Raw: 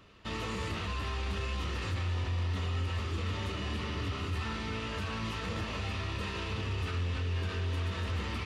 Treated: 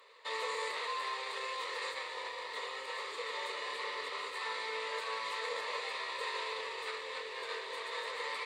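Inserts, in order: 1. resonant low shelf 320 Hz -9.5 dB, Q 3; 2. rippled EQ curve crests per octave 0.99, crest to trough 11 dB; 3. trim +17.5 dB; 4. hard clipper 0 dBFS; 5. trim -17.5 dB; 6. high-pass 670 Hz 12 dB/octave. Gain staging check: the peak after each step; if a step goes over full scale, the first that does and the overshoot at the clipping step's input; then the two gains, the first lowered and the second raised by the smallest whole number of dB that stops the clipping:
-24.5 dBFS, -21.5 dBFS, -4.0 dBFS, -4.0 dBFS, -21.5 dBFS, -25.0 dBFS; nothing clips

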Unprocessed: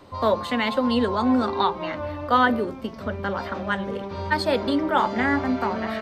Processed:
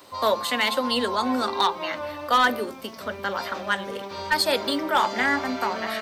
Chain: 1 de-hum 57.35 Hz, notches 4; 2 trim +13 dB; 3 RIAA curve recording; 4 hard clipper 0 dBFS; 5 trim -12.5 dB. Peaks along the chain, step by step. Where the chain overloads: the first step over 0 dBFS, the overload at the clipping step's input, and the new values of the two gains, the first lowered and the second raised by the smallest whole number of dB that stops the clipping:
-6.5 dBFS, +6.5 dBFS, +7.0 dBFS, 0.0 dBFS, -12.5 dBFS; step 2, 7.0 dB; step 2 +6 dB, step 5 -5.5 dB

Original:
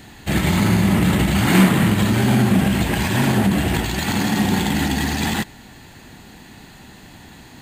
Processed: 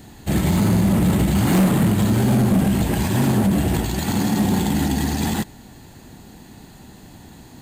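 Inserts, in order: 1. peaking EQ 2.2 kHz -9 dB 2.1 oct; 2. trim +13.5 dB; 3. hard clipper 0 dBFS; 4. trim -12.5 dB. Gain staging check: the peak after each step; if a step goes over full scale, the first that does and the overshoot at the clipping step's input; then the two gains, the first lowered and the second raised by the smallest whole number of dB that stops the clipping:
-4.5 dBFS, +9.0 dBFS, 0.0 dBFS, -12.5 dBFS; step 2, 9.0 dB; step 2 +4.5 dB, step 4 -3.5 dB

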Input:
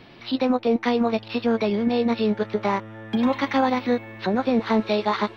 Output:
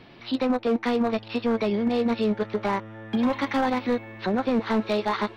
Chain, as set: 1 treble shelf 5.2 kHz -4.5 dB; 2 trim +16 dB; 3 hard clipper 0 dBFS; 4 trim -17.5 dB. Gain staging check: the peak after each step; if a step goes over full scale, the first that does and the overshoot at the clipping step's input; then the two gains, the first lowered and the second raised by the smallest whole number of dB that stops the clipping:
-9.0 dBFS, +7.0 dBFS, 0.0 dBFS, -17.5 dBFS; step 2, 7.0 dB; step 2 +9 dB, step 4 -10.5 dB

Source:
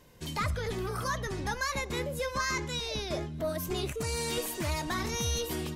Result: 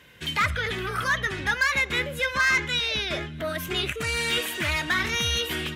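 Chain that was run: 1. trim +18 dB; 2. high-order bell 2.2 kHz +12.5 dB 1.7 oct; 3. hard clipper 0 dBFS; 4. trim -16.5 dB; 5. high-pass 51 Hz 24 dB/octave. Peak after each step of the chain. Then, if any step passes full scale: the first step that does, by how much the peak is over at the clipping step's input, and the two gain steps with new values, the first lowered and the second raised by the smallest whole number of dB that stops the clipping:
-2.5 dBFS, +7.0 dBFS, 0.0 dBFS, -16.5 dBFS, -13.0 dBFS; step 2, 7.0 dB; step 1 +11 dB, step 4 -9.5 dB

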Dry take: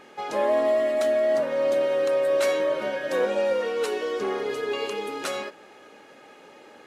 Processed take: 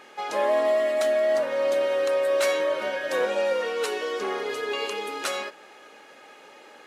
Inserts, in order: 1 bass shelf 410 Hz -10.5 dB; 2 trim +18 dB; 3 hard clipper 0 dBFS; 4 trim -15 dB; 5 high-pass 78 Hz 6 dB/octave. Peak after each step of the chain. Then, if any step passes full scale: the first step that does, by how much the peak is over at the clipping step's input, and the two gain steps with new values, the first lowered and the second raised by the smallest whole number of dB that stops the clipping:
-14.0 dBFS, +4.0 dBFS, 0.0 dBFS, -15.0 dBFS, -14.5 dBFS; step 2, 4.0 dB; step 2 +14 dB, step 4 -11 dB

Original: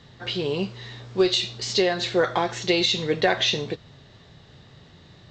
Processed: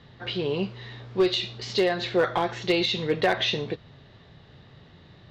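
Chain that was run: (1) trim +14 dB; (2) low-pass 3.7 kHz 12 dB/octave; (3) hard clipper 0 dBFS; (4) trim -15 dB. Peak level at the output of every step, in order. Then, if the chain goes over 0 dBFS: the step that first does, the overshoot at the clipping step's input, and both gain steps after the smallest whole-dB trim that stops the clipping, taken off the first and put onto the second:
+6.5 dBFS, +6.5 dBFS, 0.0 dBFS, -15.0 dBFS; step 1, 6.5 dB; step 1 +7 dB, step 4 -8 dB

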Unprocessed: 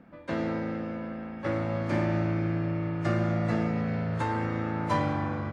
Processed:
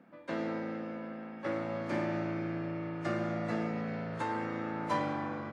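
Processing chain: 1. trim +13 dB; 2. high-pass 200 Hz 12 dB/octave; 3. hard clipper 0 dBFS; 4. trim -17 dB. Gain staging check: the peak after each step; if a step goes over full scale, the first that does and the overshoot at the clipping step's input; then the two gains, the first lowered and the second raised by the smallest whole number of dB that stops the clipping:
-1.5 dBFS, -3.0 dBFS, -3.0 dBFS, -20.0 dBFS; nothing clips

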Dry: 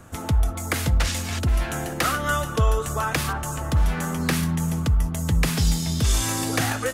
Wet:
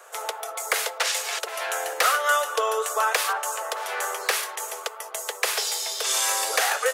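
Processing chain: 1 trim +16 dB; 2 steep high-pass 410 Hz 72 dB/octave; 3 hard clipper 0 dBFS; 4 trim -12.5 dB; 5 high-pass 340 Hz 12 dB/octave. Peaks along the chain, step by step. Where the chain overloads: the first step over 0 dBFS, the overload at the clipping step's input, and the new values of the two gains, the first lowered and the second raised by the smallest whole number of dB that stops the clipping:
+7.5 dBFS, +7.5 dBFS, 0.0 dBFS, -12.5 dBFS, -9.5 dBFS; step 1, 7.5 dB; step 1 +8 dB, step 4 -4.5 dB

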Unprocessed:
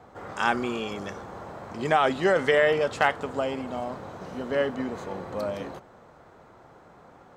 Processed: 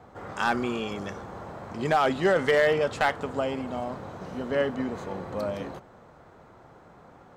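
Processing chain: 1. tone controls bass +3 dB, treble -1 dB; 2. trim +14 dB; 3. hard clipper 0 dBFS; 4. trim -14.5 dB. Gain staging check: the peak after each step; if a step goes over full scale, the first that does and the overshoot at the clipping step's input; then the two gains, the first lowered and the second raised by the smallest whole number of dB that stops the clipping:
-7.5 dBFS, +6.5 dBFS, 0.0 dBFS, -14.5 dBFS; step 2, 6.5 dB; step 2 +7 dB, step 4 -7.5 dB

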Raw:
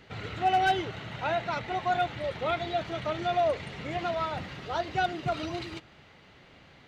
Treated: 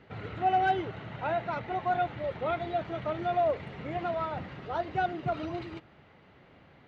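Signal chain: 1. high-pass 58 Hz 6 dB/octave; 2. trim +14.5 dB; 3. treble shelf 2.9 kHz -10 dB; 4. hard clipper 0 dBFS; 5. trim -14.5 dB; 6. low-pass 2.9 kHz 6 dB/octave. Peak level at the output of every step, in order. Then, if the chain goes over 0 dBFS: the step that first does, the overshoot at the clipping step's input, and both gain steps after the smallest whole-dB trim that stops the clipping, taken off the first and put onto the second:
-16.5 dBFS, -2.0 dBFS, -3.0 dBFS, -3.0 dBFS, -17.5 dBFS, -17.5 dBFS; nothing clips

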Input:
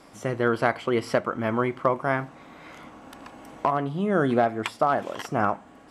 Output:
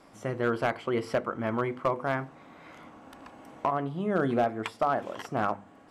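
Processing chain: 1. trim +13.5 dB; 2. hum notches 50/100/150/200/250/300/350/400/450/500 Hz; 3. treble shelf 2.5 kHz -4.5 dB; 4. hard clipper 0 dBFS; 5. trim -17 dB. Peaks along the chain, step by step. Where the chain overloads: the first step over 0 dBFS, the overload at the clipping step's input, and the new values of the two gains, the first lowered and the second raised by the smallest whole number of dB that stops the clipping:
+6.5 dBFS, +6.0 dBFS, +5.5 dBFS, 0.0 dBFS, -17.0 dBFS; step 1, 5.5 dB; step 1 +7.5 dB, step 5 -11 dB

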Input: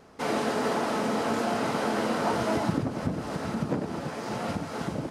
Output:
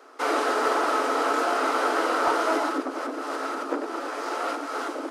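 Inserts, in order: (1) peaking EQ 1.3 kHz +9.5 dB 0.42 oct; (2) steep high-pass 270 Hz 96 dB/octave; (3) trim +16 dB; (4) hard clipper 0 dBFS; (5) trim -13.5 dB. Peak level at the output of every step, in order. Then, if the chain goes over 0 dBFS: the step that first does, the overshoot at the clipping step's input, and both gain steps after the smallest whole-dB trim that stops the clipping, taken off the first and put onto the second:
-12.0 dBFS, -11.5 dBFS, +4.5 dBFS, 0.0 dBFS, -13.5 dBFS; step 3, 4.5 dB; step 3 +11 dB, step 5 -8.5 dB

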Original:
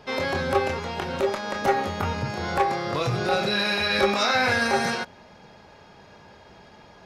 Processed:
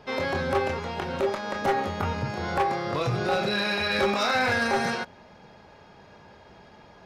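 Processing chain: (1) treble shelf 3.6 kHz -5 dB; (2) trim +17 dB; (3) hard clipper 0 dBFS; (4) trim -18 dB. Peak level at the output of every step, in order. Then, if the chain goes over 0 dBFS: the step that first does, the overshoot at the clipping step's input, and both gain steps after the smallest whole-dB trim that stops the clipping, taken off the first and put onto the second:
-10.0 dBFS, +7.0 dBFS, 0.0 dBFS, -18.0 dBFS; step 2, 7.0 dB; step 2 +10 dB, step 4 -11 dB

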